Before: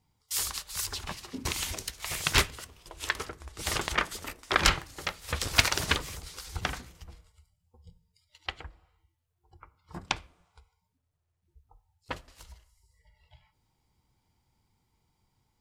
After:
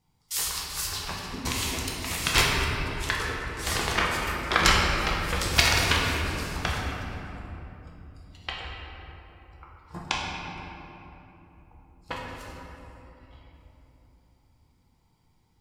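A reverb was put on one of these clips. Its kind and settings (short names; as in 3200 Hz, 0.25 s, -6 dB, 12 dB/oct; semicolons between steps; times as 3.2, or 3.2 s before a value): shoebox room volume 190 m³, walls hard, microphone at 0.75 m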